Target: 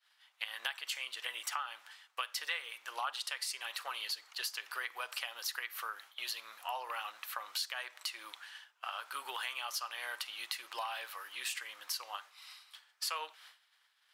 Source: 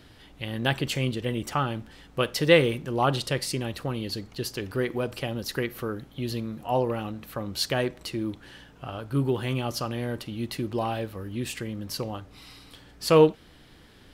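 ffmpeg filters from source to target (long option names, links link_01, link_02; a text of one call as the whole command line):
ffmpeg -i in.wav -filter_complex "[0:a]agate=range=-33dB:threshold=-40dB:ratio=3:detection=peak,highpass=frequency=1000:width=0.5412,highpass=frequency=1000:width=1.3066,acompressor=threshold=-41dB:ratio=6,asettb=1/sr,asplit=3[link_01][link_02][link_03];[link_01]atrim=end=2.414[link_04];[link_02]atrim=start=2.41:end=4.42,asetpts=PTS-STARTPTS,afade=type=in:duration=0.004:curve=qsin,afade=type=out:start_time=2.006:duration=0.004:curve=qsin,aphaser=in_gain=1:out_gain=1:delay=4.6:decay=0.25:speed=1.5:type=sinusoidal[link_05];[link_03]atrim=start=4.416[link_06];[link_04][link_05]acrossfade=duration=0.004:curve1=hsin:curve2=qsin[link_07];[link_07][link_06]acrossfade=duration=0.004:curve1=qsin:curve2=hsin,volume=5dB" out.wav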